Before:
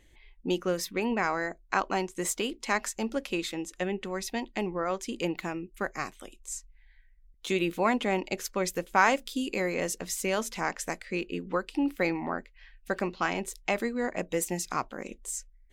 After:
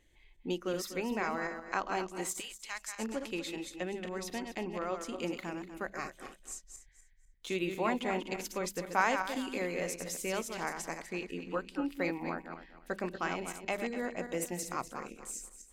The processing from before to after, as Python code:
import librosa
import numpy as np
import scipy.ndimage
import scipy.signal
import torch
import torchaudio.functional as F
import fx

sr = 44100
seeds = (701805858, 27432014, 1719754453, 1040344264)

y = fx.reverse_delay_fb(x, sr, ms=123, feedback_pct=48, wet_db=-6.5)
y = fx.tone_stack(y, sr, knobs='10-0-10', at=(2.39, 2.98), fade=0.02)
y = fx.hum_notches(y, sr, base_hz=50, count=4)
y = y * 10.0 ** (-6.5 / 20.0)